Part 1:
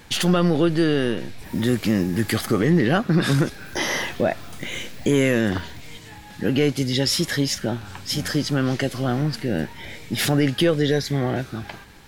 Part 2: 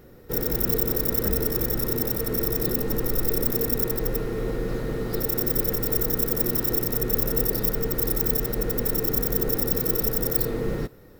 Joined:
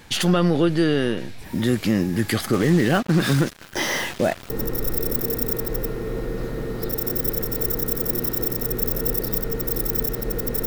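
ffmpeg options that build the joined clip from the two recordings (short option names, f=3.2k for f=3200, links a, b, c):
-filter_complex "[0:a]asettb=1/sr,asplit=3[a][b][c];[a]atrim=end=2.534[d];[b]atrim=start=2.53:end=4.5,asetpts=PTS-STARTPTS,afade=t=in:d=0.004:c=qsin,afade=t=out:st=1.966:d=0.004:c=qsin,acrusher=bits=4:mix=0:aa=0.5[e];[c]atrim=start=4.496[f];[d][e]acrossfade=d=0.004:c1=hsin:c2=qsin[g];[g][f]acrossfade=d=0.004:c1=qsin:c2=hsin,apad=whole_dur=10.66,atrim=end=10.66,atrim=end=4.502[h];[1:a]atrim=start=2.808:end=8.97[i];[h][i]acrossfade=d=0.004:c1=hsin:c2=hsin"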